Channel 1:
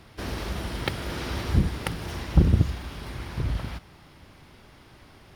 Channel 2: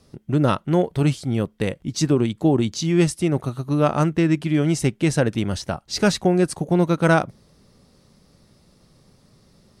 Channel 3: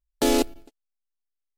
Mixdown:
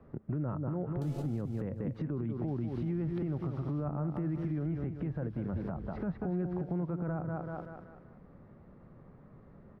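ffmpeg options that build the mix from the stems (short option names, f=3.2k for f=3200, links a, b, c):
-filter_complex "[0:a]lowpass=f=3.2k:p=1,acompressor=threshold=-37dB:ratio=3,adelay=2300,volume=-8dB,asplit=2[a][b];[b]volume=-14dB[c];[1:a]lowpass=f=1.7k:w=0.5412,lowpass=f=1.7k:w=1.3066,alimiter=limit=-12.5dB:level=0:latency=1:release=11,bandreject=f=50:t=h:w=6,bandreject=f=100:t=h:w=6,volume=0.5dB,asplit=2[d][e];[e]volume=-9.5dB[f];[2:a]acompressor=threshold=-22dB:ratio=6,adelay=800,volume=-7.5dB,asplit=2[g][h];[h]volume=-10dB[i];[c][f][i]amix=inputs=3:normalize=0,aecho=0:1:191|382|573|764|955:1|0.38|0.144|0.0549|0.0209[j];[a][d][g][j]amix=inputs=4:normalize=0,acrossover=split=200|1300[k][l][m];[k]acompressor=threshold=-27dB:ratio=4[n];[l]acompressor=threshold=-33dB:ratio=4[o];[m]acompressor=threshold=-56dB:ratio=4[p];[n][o][p]amix=inputs=3:normalize=0,alimiter=level_in=2.5dB:limit=-24dB:level=0:latency=1:release=160,volume=-2.5dB"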